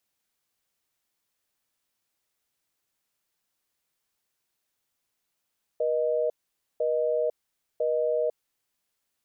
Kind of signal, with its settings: call progress tone busy tone, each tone -25.5 dBFS 2.99 s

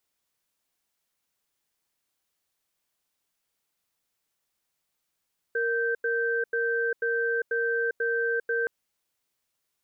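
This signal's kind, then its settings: cadence 465 Hz, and 1.56 kHz, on 0.40 s, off 0.09 s, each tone -26.5 dBFS 3.12 s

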